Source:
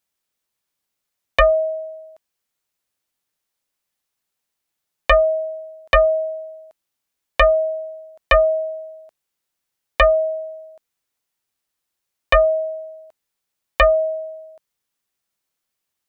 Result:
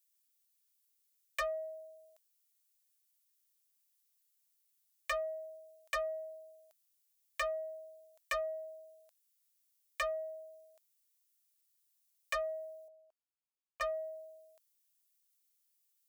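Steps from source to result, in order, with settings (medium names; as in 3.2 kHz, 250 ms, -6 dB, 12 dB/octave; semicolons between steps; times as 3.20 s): differentiator; saturation -29 dBFS, distortion -6 dB; 12.88–13.81 s: boxcar filter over 23 samples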